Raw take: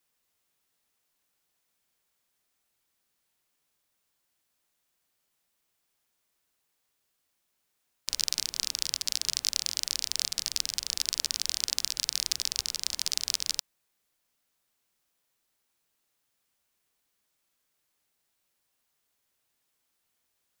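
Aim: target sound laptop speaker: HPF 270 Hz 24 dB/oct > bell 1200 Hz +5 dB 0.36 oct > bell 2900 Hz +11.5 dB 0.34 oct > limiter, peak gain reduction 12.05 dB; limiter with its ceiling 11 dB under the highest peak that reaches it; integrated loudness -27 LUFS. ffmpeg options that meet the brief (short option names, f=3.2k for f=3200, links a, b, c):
-af "alimiter=limit=-15dB:level=0:latency=1,highpass=f=270:w=0.5412,highpass=f=270:w=1.3066,equalizer=f=1.2k:t=o:w=0.36:g=5,equalizer=f=2.9k:t=o:w=0.34:g=11.5,volume=20dB,alimiter=limit=-5.5dB:level=0:latency=1"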